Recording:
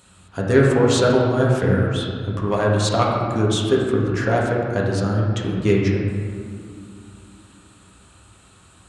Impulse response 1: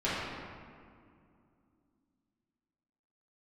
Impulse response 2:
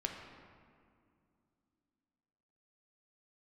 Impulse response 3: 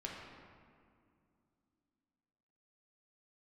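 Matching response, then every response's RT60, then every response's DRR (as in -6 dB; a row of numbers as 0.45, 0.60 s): 3; 2.3, 2.3, 2.3 s; -11.5, 1.5, -3.0 dB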